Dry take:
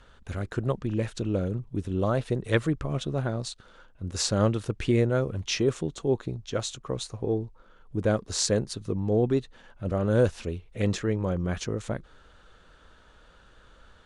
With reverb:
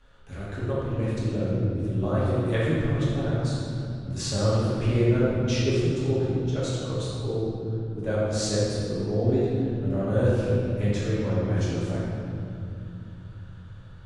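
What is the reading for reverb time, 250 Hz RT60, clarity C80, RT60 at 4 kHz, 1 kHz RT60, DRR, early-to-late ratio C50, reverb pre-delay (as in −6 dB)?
2.5 s, 4.6 s, −1.0 dB, 1.7 s, 2.2 s, −9.5 dB, −3.5 dB, 3 ms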